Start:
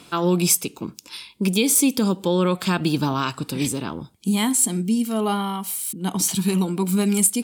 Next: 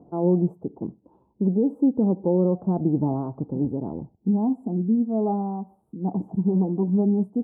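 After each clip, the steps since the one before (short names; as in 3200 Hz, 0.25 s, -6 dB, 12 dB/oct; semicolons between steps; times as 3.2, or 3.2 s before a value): elliptic low-pass 790 Hz, stop band 60 dB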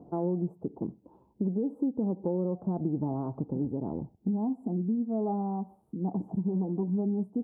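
compressor 3:1, threshold -29 dBFS, peak gain reduction 10.5 dB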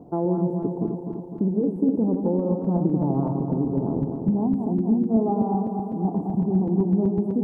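regenerating reverse delay 0.126 s, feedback 78%, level -5.5 dB; gain +6 dB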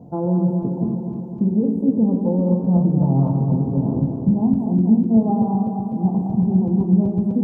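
reverb RT60 0.70 s, pre-delay 3 ms, DRR 3 dB; gain -1 dB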